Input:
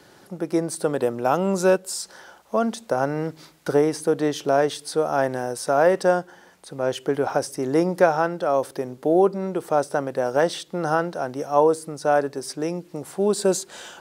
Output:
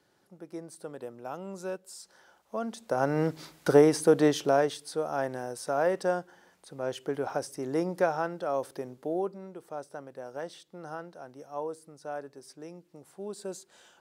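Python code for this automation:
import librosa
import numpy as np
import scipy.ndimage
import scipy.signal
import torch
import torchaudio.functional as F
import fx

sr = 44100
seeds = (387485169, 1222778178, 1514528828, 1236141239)

y = fx.gain(x, sr, db=fx.line((1.7, -18.0), (2.7, -11.0), (3.22, 0.0), (4.26, 0.0), (4.85, -9.0), (8.85, -9.0), (9.55, -18.0)))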